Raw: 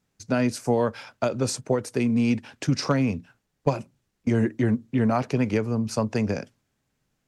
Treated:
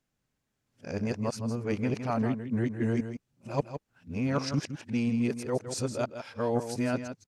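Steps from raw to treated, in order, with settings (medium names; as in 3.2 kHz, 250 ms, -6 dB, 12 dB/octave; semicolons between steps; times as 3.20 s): reverse the whole clip; delay 162 ms -9.5 dB; trim -6.5 dB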